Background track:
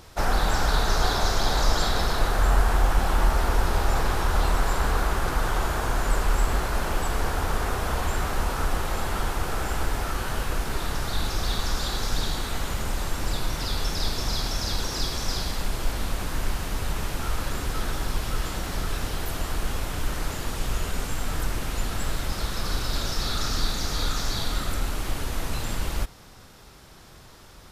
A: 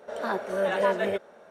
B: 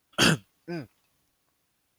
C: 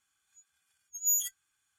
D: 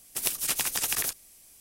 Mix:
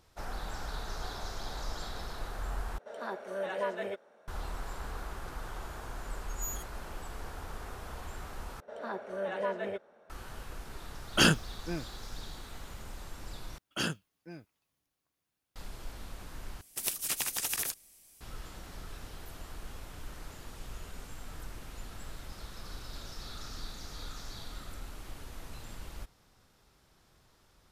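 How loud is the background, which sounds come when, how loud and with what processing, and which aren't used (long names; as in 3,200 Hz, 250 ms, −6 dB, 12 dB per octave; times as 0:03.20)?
background track −16.5 dB
0:02.78: overwrite with A −9 dB + low-shelf EQ 140 Hz −8.5 dB
0:05.35: mix in C −12.5 dB
0:08.60: overwrite with A −9 dB + high-shelf EQ 5,300 Hz −8.5 dB
0:10.99: mix in B −2 dB
0:13.58: overwrite with B −12 dB
0:16.61: overwrite with D −5 dB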